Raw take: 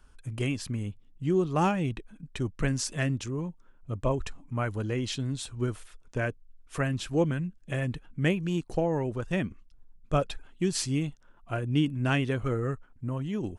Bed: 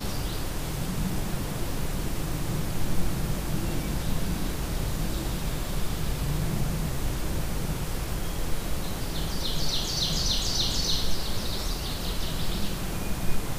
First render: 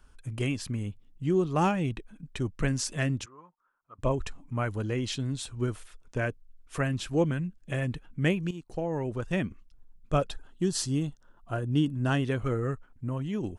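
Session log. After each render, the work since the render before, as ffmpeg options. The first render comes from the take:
-filter_complex "[0:a]asplit=3[a][b][c];[a]afade=t=out:st=3.24:d=0.02[d];[b]bandpass=f=1.2k:t=q:w=3.4,afade=t=in:st=3.24:d=0.02,afade=t=out:st=3.98:d=0.02[e];[c]afade=t=in:st=3.98:d=0.02[f];[d][e][f]amix=inputs=3:normalize=0,asettb=1/sr,asplit=3[g][h][i];[g]atrim=end=10.304[j];[h]atrim=start=10.3:end=12.24,asetpts=PTS-STARTPTS,afade=t=in:d=0.004:c=qsin,afade=t=out:st=1.936:d=0.004:c=qsin,equalizer=f=2.3k:t=o:w=0.37:g=-13[k];[i]atrim=start=12.236[l];[j][k]acrossfade=d=0.004:c1=hsin:c2=qsin[m];[m][l]acrossfade=d=0.004:c1=qsin:c2=hsin,asplit=2[n][o];[n]atrim=end=8.51,asetpts=PTS-STARTPTS,afade=t=out:st=8.506:d=0.004:c=hsin:silence=0.199526[p];[o]atrim=start=8.51,asetpts=PTS-STARTPTS,afade=t=in:d=0.67:silence=0.199526[q];[p][q]concat=n=2:v=0:a=1"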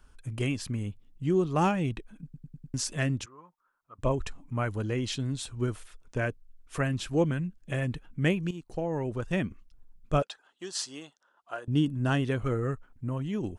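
-filter_complex "[0:a]asettb=1/sr,asplit=3[a][b][c];[a]atrim=end=10.224[d];[b]atrim=start=10.22:end=11.68,asetpts=PTS-STARTPTS,afade=t=in:d=0.004:c=qsin,afade=t=out:st=1.456:d=0.004:c=qsin,highpass=660,lowpass=7.5k[e];[c]atrim=start=11.676[f];[d][e]acrossfade=d=0.004:c1=hsin:c2=qsin[g];[g][f]acrossfade=d=0.004:c1=qsin:c2=hsin,asplit=6[h][i][j][k][l][m];[h]atrim=end=2.342[n];[i]atrim=start=2.238:end=2.342[o];[j]atrim=start=2.238:end=2.342[p];[k]atrim=start=2.238:end=2.342[q];[l]atrim=start=2.238:end=2.342[r];[m]atrim=start=2.738[s];[n][o]acrossfade=d=0.004:c1=hsin:c2=hsin[t];[t][p]acrossfade=d=0.004:c1=hsin:c2=hsin[u];[u][q]acrossfade=d=0.004:c1=hsin:c2=hsin[v];[v][r]acrossfade=d=0.004:c1=hsin:c2=hsin[w];[w][s]acrossfade=d=0.004:c1=hsin:c2=hsin"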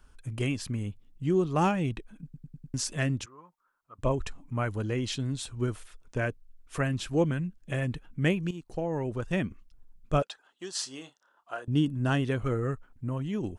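-filter_complex "[0:a]asettb=1/sr,asplit=3[a][b][c];[a]atrim=end=10.804[d];[b]atrim=start=10.8:end=11.62,asetpts=PTS-STARTPTS,afade=t=in:d=0.004:c=qsin,afade=t=out:st=0.816:d=0.004:c=qsin,asplit=2[e][f];[f]adelay=30,volume=-10.5dB[g];[e][g]amix=inputs=2:normalize=0,atrim=end_sample=36162[h];[c]atrim=start=11.616[i];[d][h]acrossfade=d=0.004:c1=hsin:c2=qsin[j];[j][i]acrossfade=d=0.004:c1=qsin:c2=hsin"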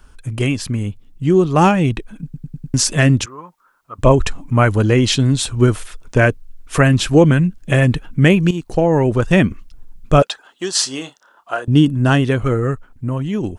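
-af "dynaudnorm=f=210:g=21:m=5.5dB,alimiter=level_in=11.5dB:limit=-1dB:release=50:level=0:latency=1"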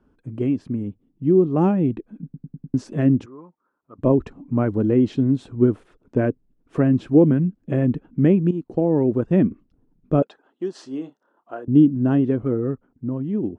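-af "bandpass=f=280:t=q:w=1.5:csg=0"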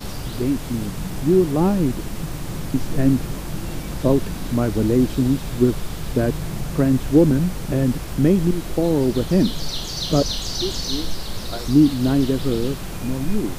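-filter_complex "[1:a]volume=0.5dB[a];[0:a][a]amix=inputs=2:normalize=0"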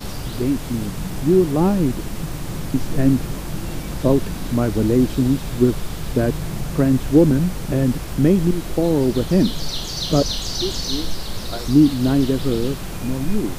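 -af "volume=1dB"

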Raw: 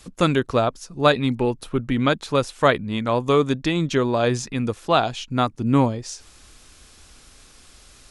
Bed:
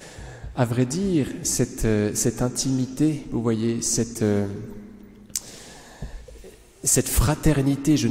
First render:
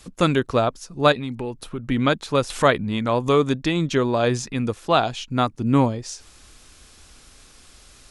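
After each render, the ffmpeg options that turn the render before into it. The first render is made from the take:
-filter_complex "[0:a]asettb=1/sr,asplit=3[a][b][c];[a]atrim=end=1.124[d];[b]atrim=start=1.12:end=1.84,asetpts=PTS-STARTPTS,afade=t=in:d=0.004:c=qsin,afade=t=out:st=0.716:d=0.004:c=qsin,acompressor=threshold=-28dB:ratio=2.5:attack=3.2:release=140:knee=1:detection=peak[e];[c]atrim=start=1.836[f];[d][e]acrossfade=d=0.004:c1=hsin:c2=qsin[g];[g][f]acrossfade=d=0.004:c1=qsin:c2=hsin,asettb=1/sr,asplit=3[h][i][j];[h]atrim=end=2.504[k];[i]atrim=start=2.5:end=3.51,asetpts=PTS-STARTPTS,afade=t=in:d=0.004:c=qsin,afade=t=out:st=1.006:d=0.004:c=qsin,acompressor=mode=upward:threshold=-19dB:ratio=2.5:attack=3.2:release=140:knee=2.83:detection=peak[l];[j]atrim=start=3.506[m];[k][l]acrossfade=d=0.004:c1=hsin:c2=qsin[n];[n][m]acrossfade=d=0.004:c1=qsin:c2=hsin"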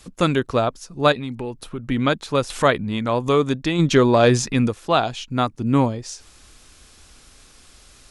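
-filter_complex "[0:a]asplit=3[a][b][c];[a]afade=t=out:st=3.78:d=0.02[d];[b]acontrast=59,afade=t=in:st=3.78:d=0.02,afade=t=out:st=4.67:d=0.02[e];[c]afade=t=in:st=4.67:d=0.02[f];[d][e][f]amix=inputs=3:normalize=0"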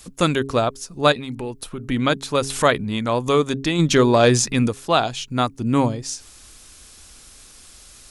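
-af "highshelf=f=5.9k:g=10,bandreject=f=136.1:t=h:w=4,bandreject=f=272.2:t=h:w=4,bandreject=f=408.3:t=h:w=4"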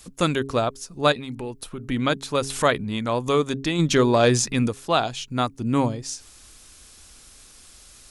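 -af "volume=-3dB"

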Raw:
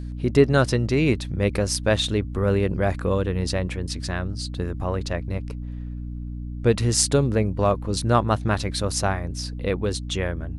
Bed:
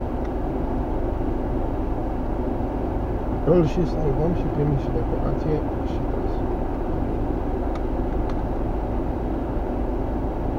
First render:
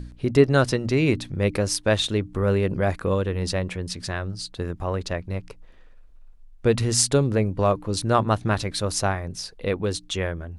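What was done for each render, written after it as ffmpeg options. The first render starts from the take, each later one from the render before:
-af "bandreject=f=60:t=h:w=4,bandreject=f=120:t=h:w=4,bandreject=f=180:t=h:w=4,bandreject=f=240:t=h:w=4,bandreject=f=300:t=h:w=4"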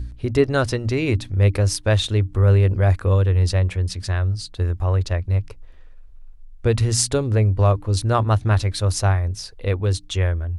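-af "lowshelf=f=120:t=q:w=3:g=6.5"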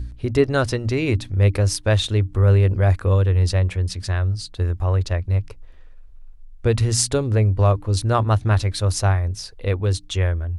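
-af anull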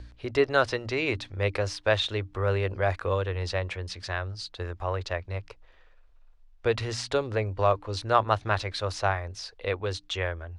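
-filter_complex "[0:a]acrossover=split=3800[a][b];[b]acompressor=threshold=-33dB:ratio=4:attack=1:release=60[c];[a][c]amix=inputs=2:normalize=0,acrossover=split=440 6300:gain=0.178 1 0.126[d][e][f];[d][e][f]amix=inputs=3:normalize=0"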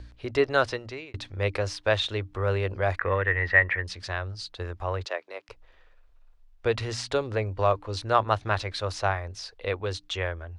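-filter_complex "[0:a]asettb=1/sr,asplit=3[a][b][c];[a]atrim=end=2.994[d];[b]atrim=start=2.99:end=3.84,asetpts=PTS-STARTPTS,afade=t=in:d=0.004:c=qsin,afade=t=out:st=0.846:d=0.004:c=qsin,lowpass=f=1.9k:t=q:w=13[e];[c]atrim=start=3.836[f];[d][e]acrossfade=d=0.004:c1=hsin:c2=qsin[g];[g][f]acrossfade=d=0.004:c1=qsin:c2=hsin,asettb=1/sr,asplit=3[h][i][j];[h]atrim=end=5.054[k];[i]atrim=start=5.05:end=5.49,asetpts=PTS-STARTPTS,afade=t=in:d=0.004:c=qsin,afade=t=out:st=0.436:d=0.004:c=qsin,highpass=f=340:w=0.5412,highpass=f=340:w=1.3066[l];[j]atrim=start=5.486[m];[k][l]acrossfade=d=0.004:c1=hsin:c2=qsin[n];[n][m]acrossfade=d=0.004:c1=qsin:c2=hsin,asplit=2[o][p];[o]atrim=end=1.14,asetpts=PTS-STARTPTS,afade=t=out:st=0.63:d=0.51[q];[p]atrim=start=1.14,asetpts=PTS-STARTPTS,afade=t=in:d=0.004:c=hsin[r];[q][r]concat=n=2:v=0:a=1"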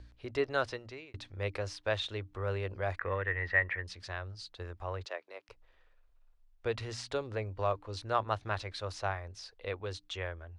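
-af "volume=-8.5dB"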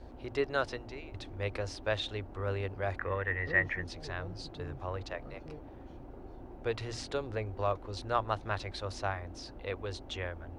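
-filter_complex "[1:a]volume=-23.5dB[a];[0:a][a]amix=inputs=2:normalize=0"

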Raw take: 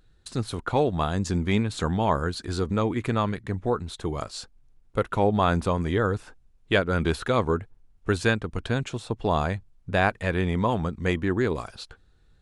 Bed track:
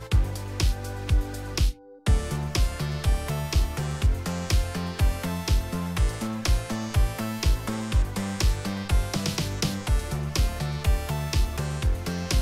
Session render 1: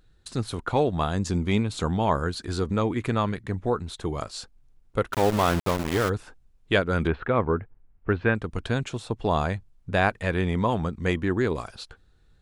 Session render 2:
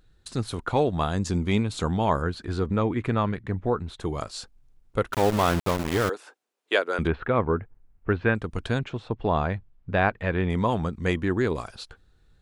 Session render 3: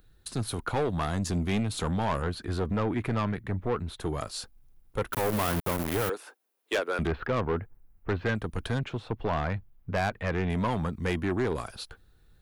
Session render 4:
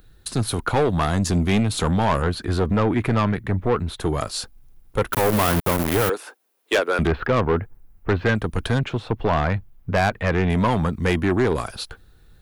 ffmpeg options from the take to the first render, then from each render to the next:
-filter_complex "[0:a]asettb=1/sr,asplit=3[a][b][c];[a]atrim=end=1.304[d];[b]atrim=start=1.3:end=1.99,asetpts=PTS-STARTPTS,afade=t=in:d=0.004:c=qsin,afade=t=out:st=0.686:d=0.004:c=qsin,equalizer=f=1.7k:t=o:w=0.31:g=-6.5[e];[c]atrim=start=1.986[f];[d][e]acrossfade=d=0.004:c1=hsin:c2=qsin[g];[g][f]acrossfade=d=0.004:c1=qsin:c2=hsin,asplit=3[h][i][j];[h]afade=t=out:st=5.12:d=0.02[k];[i]aeval=exprs='val(0)*gte(abs(val(0)),0.0596)':c=same,afade=t=in:st=5.12:d=0.02,afade=t=out:st=6.08:d=0.02[l];[j]afade=t=in:st=6.08:d=0.02[m];[k][l][m]amix=inputs=3:normalize=0,asettb=1/sr,asplit=3[n][o][p];[n]atrim=end=7.074[q];[o]atrim=start=7.07:end=8.35,asetpts=PTS-STARTPTS,afade=t=in:d=0.004:c=qsin,afade=t=out:st=1.276:d=0.004:c=qsin,lowpass=f=2.4k:w=0.5412,lowpass=f=2.4k:w=1.3066[r];[p]atrim=start=8.346[s];[q][r]acrossfade=d=0.004:c1=hsin:c2=qsin[t];[t][s]acrossfade=d=0.004:c1=qsin:c2=hsin"
-filter_complex "[0:a]asettb=1/sr,asplit=3[a][b][c];[a]atrim=end=2.224[d];[b]atrim=start=2.22:end=4,asetpts=PTS-STARTPTS,afade=t=in:d=0.004:c=qsin,afade=t=out:st=1.776:d=0.004:c=qsin,bass=f=250:g=1,treble=f=4k:g=-11[e];[c]atrim=start=3.996[f];[d][e]acrossfade=d=0.004:c1=hsin:c2=qsin[g];[g][f]acrossfade=d=0.004:c1=qsin:c2=hsin,asettb=1/sr,asplit=3[h][i][j];[h]atrim=end=6.094[k];[i]atrim=start=6.09:end=6.99,asetpts=PTS-STARTPTS,afade=t=in:d=0.004:c=qsin,afade=t=out:st=0.896:d=0.004:c=qsin,highpass=f=360:w=0.5412,highpass=f=360:w=1.3066[l];[j]atrim=start=6.986[m];[k][l]acrossfade=d=0.004:c1=hsin:c2=qsin[n];[n][m]acrossfade=d=0.004:c1=qsin:c2=hsin,asettb=1/sr,asplit=3[o][p][q];[o]atrim=end=8.794[r];[p]atrim=start=8.79:end=10.5,asetpts=PTS-STARTPTS,afade=t=in:d=0.004:c=qsin,afade=t=out:st=1.706:d=0.004:c=qsin,lowpass=2.9k[s];[q]atrim=start=10.496[t];[r][s]acrossfade=d=0.004:c1=hsin:c2=qsin[u];[u][t]acrossfade=d=0.004:c1=qsin:c2=hsin"
-filter_complex "[0:a]acrossover=split=230[a][b];[b]aexciter=amount=3.8:drive=4.9:freq=10k[c];[a][c]amix=inputs=2:normalize=0,asoftclip=type=tanh:threshold=-22dB"
-af "volume=8.5dB"

